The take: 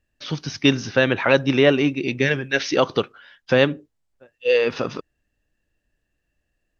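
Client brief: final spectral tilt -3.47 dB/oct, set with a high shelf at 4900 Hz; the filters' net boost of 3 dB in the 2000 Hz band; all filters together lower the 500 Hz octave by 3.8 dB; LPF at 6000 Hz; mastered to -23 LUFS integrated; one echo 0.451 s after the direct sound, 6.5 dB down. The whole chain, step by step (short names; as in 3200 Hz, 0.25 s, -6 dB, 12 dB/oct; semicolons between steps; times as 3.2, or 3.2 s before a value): LPF 6000 Hz; bell 500 Hz -4.5 dB; bell 2000 Hz +5.5 dB; high shelf 4900 Hz -7.5 dB; echo 0.451 s -6.5 dB; gain -2 dB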